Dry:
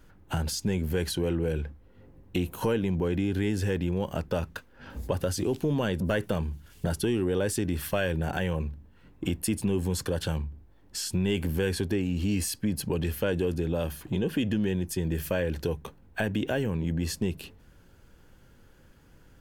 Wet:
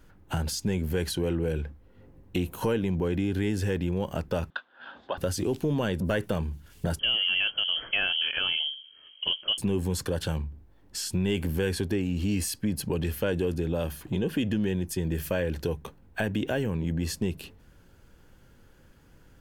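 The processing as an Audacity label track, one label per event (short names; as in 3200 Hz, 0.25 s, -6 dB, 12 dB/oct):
4.500000	5.180000	speaker cabinet 450–3700 Hz, peaks and dips at 460 Hz -8 dB, 720 Hz +5 dB, 1100 Hz +3 dB, 1500 Hz +7 dB, 2200 Hz -7 dB, 3500 Hz +10 dB
6.990000	9.580000	inverted band carrier 3200 Hz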